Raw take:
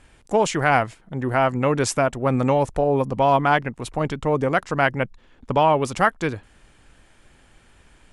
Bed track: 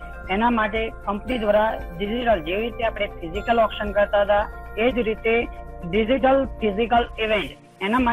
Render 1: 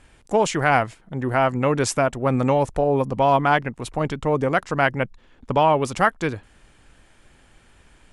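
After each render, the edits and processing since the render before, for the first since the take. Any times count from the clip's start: nothing audible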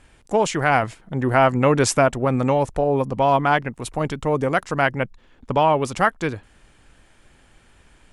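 0.83–2.25 gain +3.5 dB; 3.71–4.82 high shelf 10000 Hz +10 dB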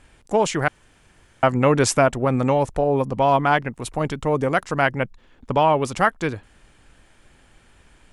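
0.68–1.43 room tone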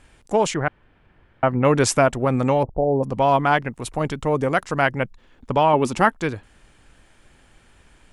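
0.54–1.65 air absorption 420 m; 2.63–3.03 steep low-pass 820 Hz; 5.73–6.13 small resonant body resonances 240/340/890/2600 Hz, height 8 dB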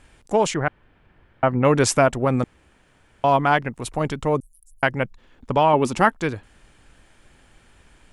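2.44–3.24 room tone; 4.4–4.83 inverse Chebyshev band-stop 200–2200 Hz, stop band 80 dB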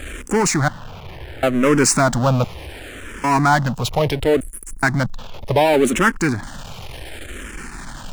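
power-law curve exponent 0.5; endless phaser -0.69 Hz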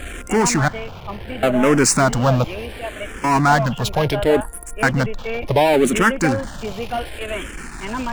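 add bed track -6.5 dB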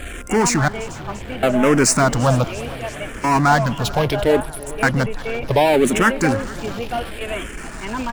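echo 0.443 s -20.5 dB; warbling echo 0.34 s, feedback 74%, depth 109 cents, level -21 dB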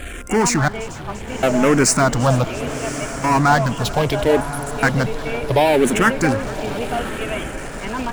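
diffused feedback echo 1.096 s, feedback 43%, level -12.5 dB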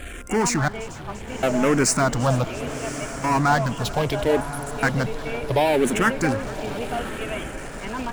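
gain -4.5 dB

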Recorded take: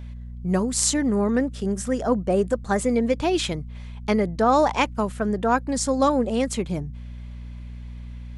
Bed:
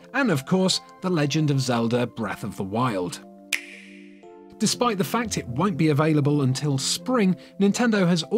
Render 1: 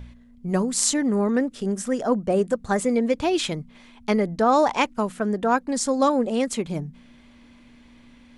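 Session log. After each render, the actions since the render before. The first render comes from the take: de-hum 60 Hz, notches 3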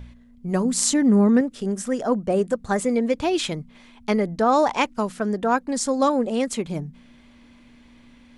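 0.65–1.41 bell 180 Hz +8 dB 1.4 oct; 4.93–5.37 bell 5100 Hz +5.5 dB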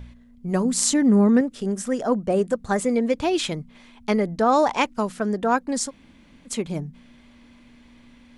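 5.88–6.48 room tone, crossfade 0.06 s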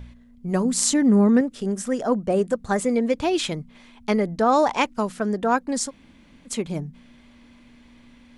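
nothing audible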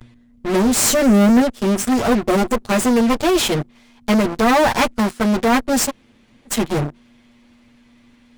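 minimum comb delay 8.5 ms; in parallel at -5 dB: fuzz box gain 38 dB, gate -34 dBFS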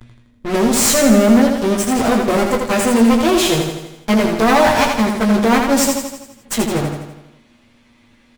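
doubler 18 ms -6.5 dB; on a send: feedback echo 82 ms, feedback 56%, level -5 dB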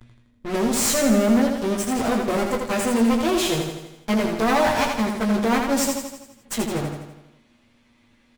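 gain -7 dB

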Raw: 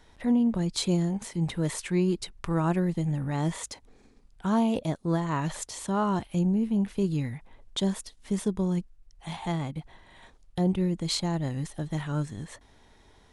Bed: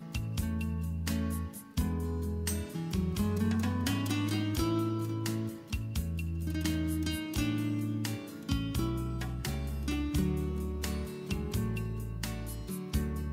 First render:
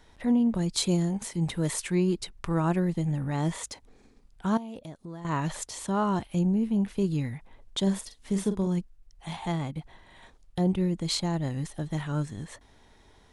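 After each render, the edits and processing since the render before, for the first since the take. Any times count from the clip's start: 0.54–1.95 high shelf 6600 Hz +6 dB; 4.57–5.25 compressor 3:1, threshold -41 dBFS; 7.82–8.67 doubler 46 ms -8.5 dB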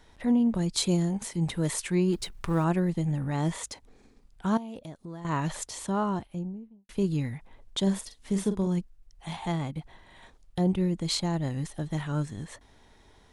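2.13–2.64 G.711 law mismatch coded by mu; 5.75–6.89 studio fade out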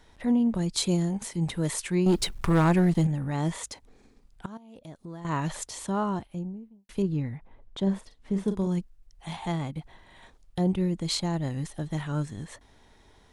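2.06–3.07 sample leveller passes 2; 4.46–4.95 fade in quadratic, from -18.5 dB; 7.02–8.48 LPF 1400 Hz 6 dB/oct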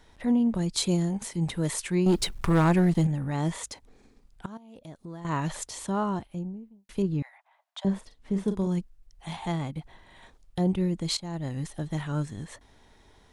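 7.22–7.85 steep high-pass 640 Hz 72 dB/oct; 11.17–11.75 fade in equal-power, from -14.5 dB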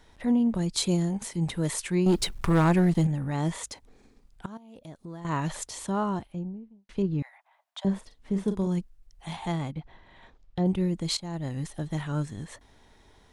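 6.32–7.19 air absorption 88 m; 9.72–10.66 air absorption 130 m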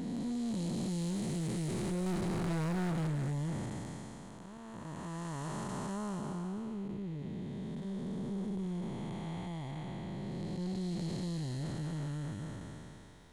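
time blur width 1.03 s; soft clip -31 dBFS, distortion -10 dB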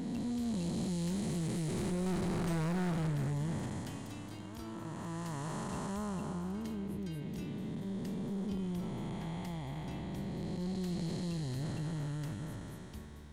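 add bed -17 dB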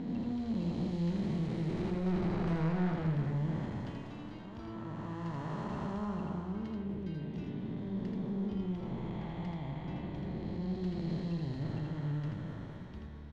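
air absorption 230 m; echo 82 ms -4 dB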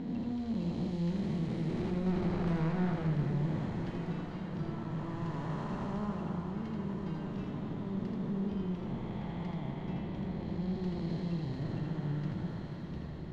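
diffused feedback echo 1.442 s, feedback 62%, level -8 dB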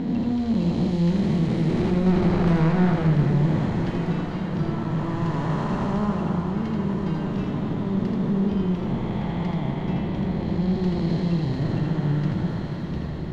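gain +12 dB

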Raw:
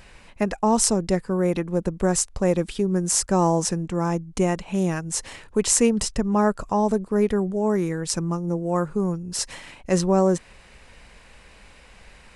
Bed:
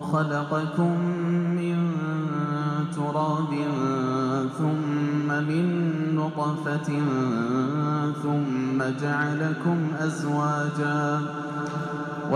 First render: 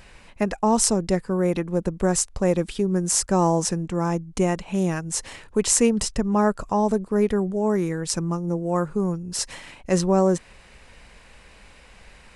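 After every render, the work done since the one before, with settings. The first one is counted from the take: nothing audible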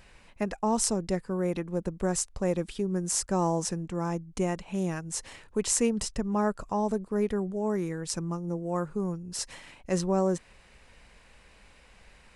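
gain -7 dB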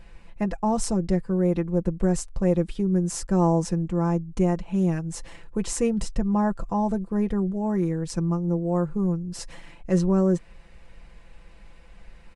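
tilt -2 dB/oct; comb 5.9 ms, depth 55%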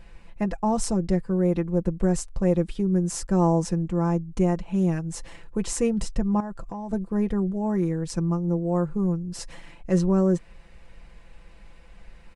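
6.4–6.93 compressor 10:1, threshold -30 dBFS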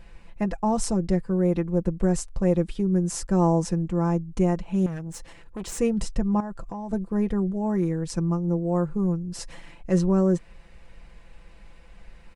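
4.86–5.79 tube stage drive 29 dB, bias 0.55

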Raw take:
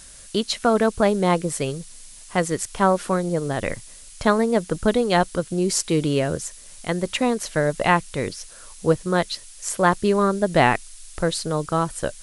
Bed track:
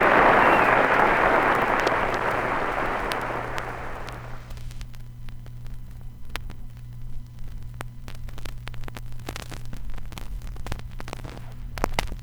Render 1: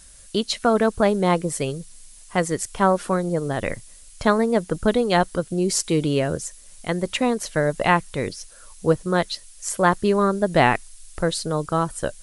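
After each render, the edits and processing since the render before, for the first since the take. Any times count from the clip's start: denoiser 6 dB, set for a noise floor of -44 dBFS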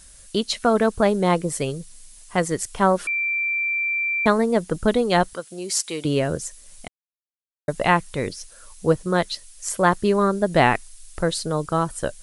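3.07–4.26 bleep 2350 Hz -20.5 dBFS; 5.33–6.05 HPF 1000 Hz 6 dB/oct; 6.88–7.68 mute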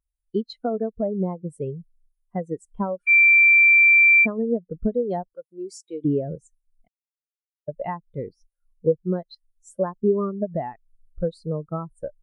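compressor 16:1, threshold -21 dBFS, peak gain reduction 11 dB; spectral expander 2.5:1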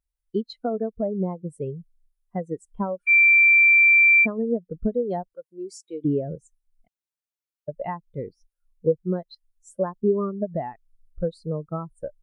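gain -1 dB

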